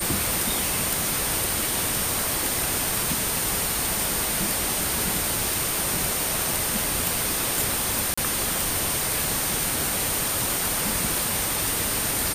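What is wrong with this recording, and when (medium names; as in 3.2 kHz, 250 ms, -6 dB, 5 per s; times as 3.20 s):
crackle 47 per s -32 dBFS
whine 8.9 kHz -30 dBFS
8.14–8.18 s: dropout 35 ms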